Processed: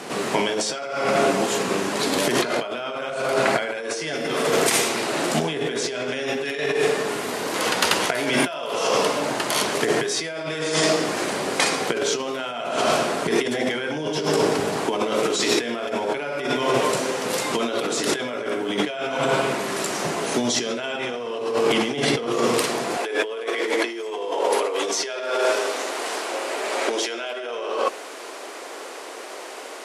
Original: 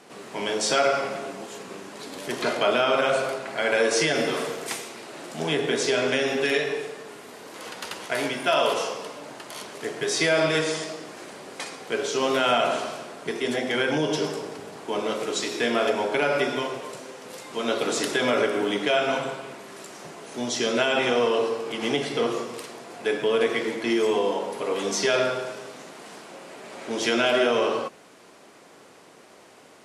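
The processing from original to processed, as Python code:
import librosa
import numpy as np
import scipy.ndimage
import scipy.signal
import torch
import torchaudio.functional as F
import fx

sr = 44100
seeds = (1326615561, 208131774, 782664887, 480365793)

y = fx.over_compress(x, sr, threshold_db=-33.0, ratio=-1.0)
y = fx.highpass(y, sr, hz=fx.steps((0.0, 48.0), (22.97, 340.0)), slope=24)
y = F.gain(torch.from_numpy(y), 9.0).numpy()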